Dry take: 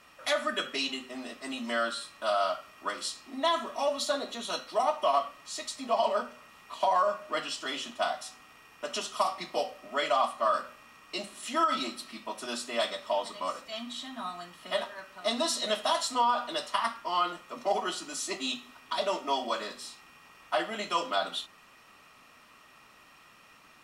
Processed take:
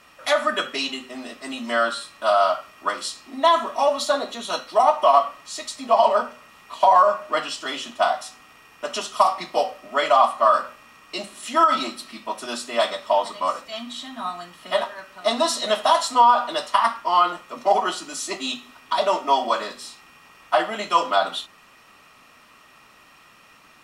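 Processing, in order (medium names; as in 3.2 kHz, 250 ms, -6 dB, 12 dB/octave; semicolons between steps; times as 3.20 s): dynamic bell 910 Hz, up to +7 dB, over -40 dBFS, Q 0.98; trim +5 dB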